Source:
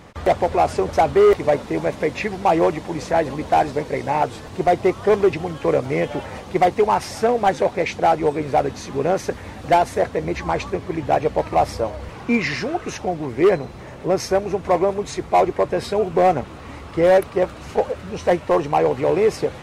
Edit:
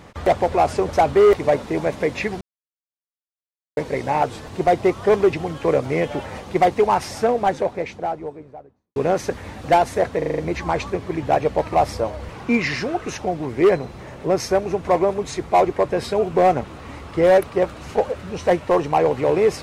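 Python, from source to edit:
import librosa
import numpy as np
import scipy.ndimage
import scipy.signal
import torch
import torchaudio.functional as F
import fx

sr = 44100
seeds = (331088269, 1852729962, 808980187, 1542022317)

y = fx.studio_fade_out(x, sr, start_s=6.95, length_s=2.01)
y = fx.edit(y, sr, fx.silence(start_s=2.41, length_s=1.36),
    fx.stutter(start_s=10.18, slice_s=0.04, count=6), tone=tone)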